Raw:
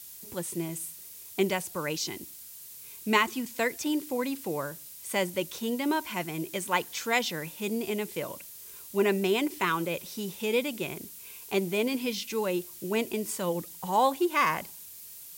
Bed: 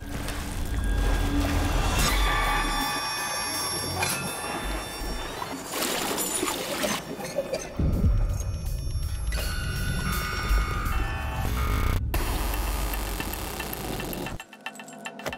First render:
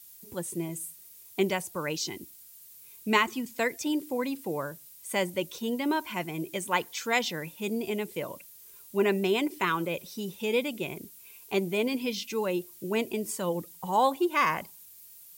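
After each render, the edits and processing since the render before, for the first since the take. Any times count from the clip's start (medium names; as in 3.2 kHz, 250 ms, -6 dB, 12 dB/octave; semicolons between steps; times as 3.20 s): noise reduction 8 dB, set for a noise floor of -46 dBFS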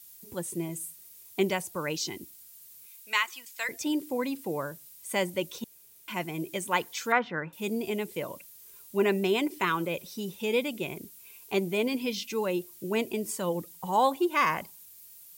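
2.86–3.69 s: high-pass 1.3 kHz; 5.64–6.08 s: room tone; 7.12–7.53 s: resonant low-pass 1.4 kHz, resonance Q 3.9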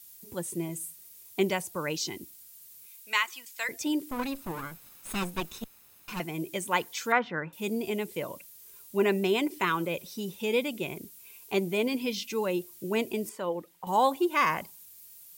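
4.11–6.20 s: comb filter that takes the minimum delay 0.77 ms; 13.29–13.87 s: tone controls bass -11 dB, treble -14 dB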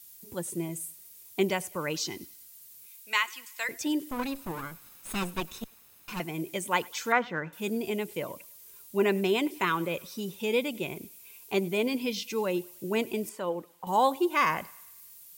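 thinning echo 99 ms, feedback 58%, high-pass 550 Hz, level -23.5 dB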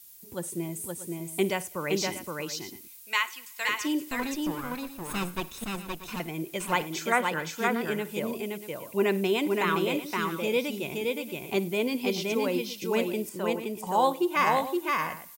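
multi-tap echo 56/520/636 ms -19/-3/-14 dB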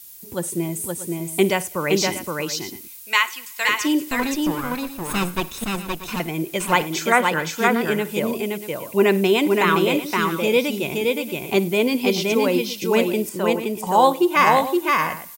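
trim +8.5 dB; peak limiter -2 dBFS, peak gain reduction 1 dB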